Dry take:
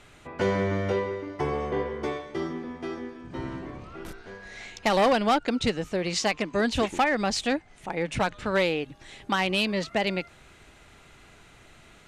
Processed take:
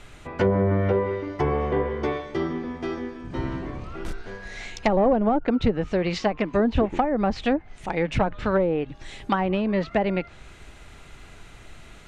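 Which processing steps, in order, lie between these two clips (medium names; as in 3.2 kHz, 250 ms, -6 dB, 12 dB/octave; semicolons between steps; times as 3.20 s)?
low-pass that closes with the level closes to 640 Hz, closed at -19.5 dBFS; bass shelf 65 Hz +11.5 dB; trim +4 dB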